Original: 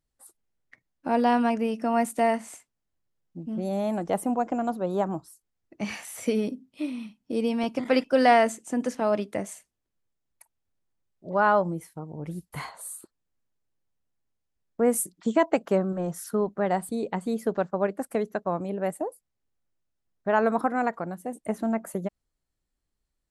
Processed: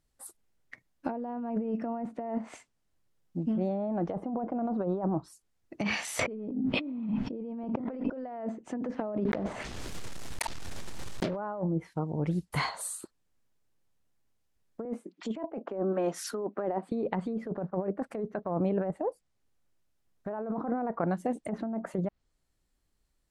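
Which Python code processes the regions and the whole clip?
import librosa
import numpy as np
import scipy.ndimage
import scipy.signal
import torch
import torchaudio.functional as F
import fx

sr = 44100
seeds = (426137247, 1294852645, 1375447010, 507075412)

y = fx.chain(x, sr, fx.lowpass(hz=3700.0, slope=6),
    fx.env_flatten(amount_pct=70), at=(6.19, 8.1))
y = fx.chain(y, sr, fx.block_float(bits=3),
    fx.env_flatten(amount_pct=70), at=(9.25, 11.38))
y = fx.chain(y, sr, fx.cheby1_highpass(hz=260.0, order=3),
    fx.peak_eq(hz=2500.0, db=5.0, octaves=0.55), at=(14.85, 16.92))
y = fx.env_lowpass_down(y, sr, base_hz=810.0, full_db=-23.0)
y = fx.dynamic_eq(y, sr, hz=4500.0, q=1.3, threshold_db=-54.0, ratio=4.0, max_db=5)
y = fx.over_compress(y, sr, threshold_db=-32.0, ratio=-1.0)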